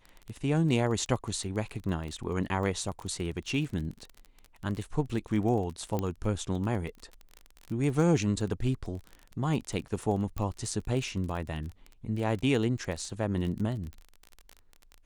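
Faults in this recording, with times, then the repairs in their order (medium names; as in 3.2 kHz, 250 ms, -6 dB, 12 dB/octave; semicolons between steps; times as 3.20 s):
crackle 26 per s -35 dBFS
5.99 s: pop -18 dBFS
10.38 s: pop -21 dBFS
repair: de-click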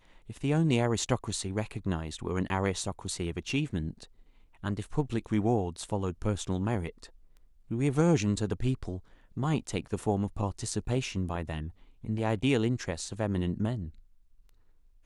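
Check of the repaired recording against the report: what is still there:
10.38 s: pop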